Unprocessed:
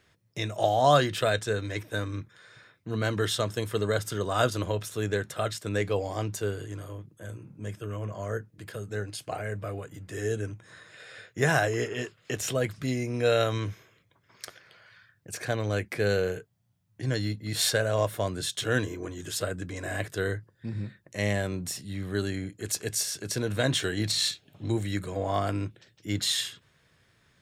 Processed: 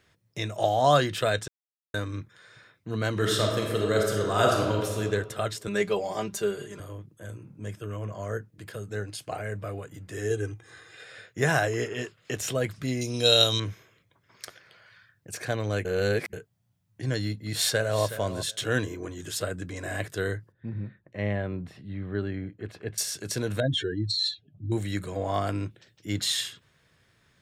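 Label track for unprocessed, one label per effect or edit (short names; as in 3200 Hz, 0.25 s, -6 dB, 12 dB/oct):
1.480000	1.940000	mute
3.110000	5.000000	reverb throw, RT60 1.4 s, DRR -0.5 dB
5.670000	6.800000	comb 5 ms, depth 87%
10.300000	11.040000	comb 2.5 ms
13.010000	13.600000	resonant high shelf 2700 Hz +10 dB, Q 3
15.850000	16.330000	reverse
17.350000	18.050000	echo throw 0.37 s, feedback 15%, level -12.5 dB
20.520000	22.980000	air absorption 460 m
23.600000	24.720000	spectral contrast raised exponent 2.3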